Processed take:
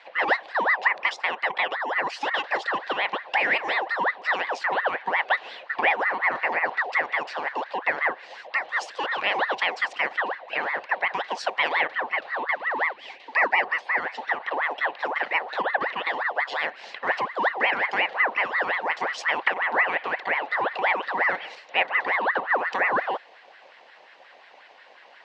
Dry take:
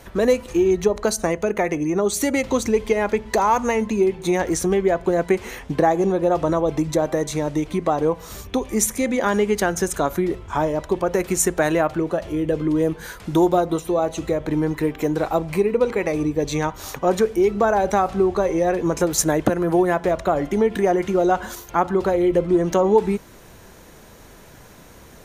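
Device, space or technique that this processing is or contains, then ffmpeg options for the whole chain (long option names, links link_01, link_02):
voice changer toy: -filter_complex "[0:a]asettb=1/sr,asplit=3[link_01][link_02][link_03];[link_01]atrim=end=12.514[link_04];[link_02]atrim=start=12.51:end=13.62,asetpts=PTS-STARTPTS,afade=type=in:duration=0.004:curve=qsin,afade=type=out:start_time=1.106:duration=0.004:curve=qsin,highpass=frequency=270:width=0.5412,highpass=frequency=270:width=1.3066[link_05];[link_03]atrim=start=13.616[link_06];[link_04][link_05]acrossfade=duration=0.004:curve1=hsin:curve2=qsin[link_07];[link_07][link_06]acrossfade=duration=0.004:curve1=qsin:curve2=hsin,aeval=exprs='val(0)*sin(2*PI*1100*n/s+1100*0.5/5.6*sin(2*PI*5.6*n/s))':channel_layout=same,highpass=510,equalizer=frequency=530:width_type=q:width=4:gain=5,equalizer=frequency=770:width_type=q:width=4:gain=5,equalizer=frequency=1300:width_type=q:width=4:gain=-8,equalizer=frequency=1900:width_type=q:width=4:gain=6,equalizer=frequency=2800:width_type=q:width=4:gain=5,equalizer=frequency=4100:width_type=q:width=4:gain=4,lowpass=frequency=4400:width=0.5412,lowpass=frequency=4400:width=1.3066,volume=-3.5dB"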